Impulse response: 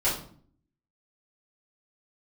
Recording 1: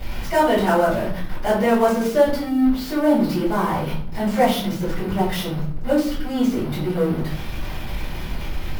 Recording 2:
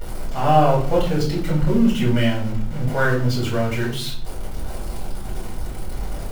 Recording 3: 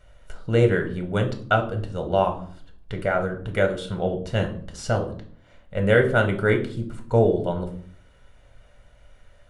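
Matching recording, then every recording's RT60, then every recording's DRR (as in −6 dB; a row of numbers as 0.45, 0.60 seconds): 1; 0.50, 0.50, 0.50 seconds; −11.5, −6.0, 4.0 decibels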